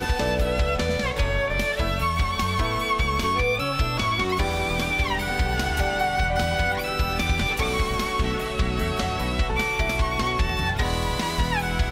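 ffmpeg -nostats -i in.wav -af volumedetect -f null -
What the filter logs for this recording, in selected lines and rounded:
mean_volume: -23.6 dB
max_volume: -12.4 dB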